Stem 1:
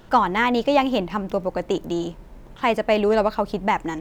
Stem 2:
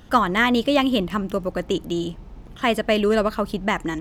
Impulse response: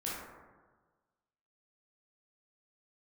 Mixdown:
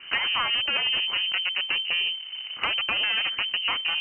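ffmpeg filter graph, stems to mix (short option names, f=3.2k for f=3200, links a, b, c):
-filter_complex "[0:a]bandreject=f=470:w=12,acompressor=threshold=-24dB:ratio=6,volume=3dB[a];[1:a]lowshelf=f=220:g=-6,volume=2dB[b];[a][b]amix=inputs=2:normalize=0,aeval=exprs='0.596*(cos(1*acos(clip(val(0)/0.596,-1,1)))-cos(1*PI/2))+0.168*(cos(6*acos(clip(val(0)/0.596,-1,1)))-cos(6*PI/2))+0.266*(cos(8*acos(clip(val(0)/0.596,-1,1)))-cos(8*PI/2))':c=same,lowpass=f=2.6k:t=q:w=0.5098,lowpass=f=2.6k:t=q:w=0.6013,lowpass=f=2.6k:t=q:w=0.9,lowpass=f=2.6k:t=q:w=2.563,afreqshift=-3100,acompressor=threshold=-27dB:ratio=3"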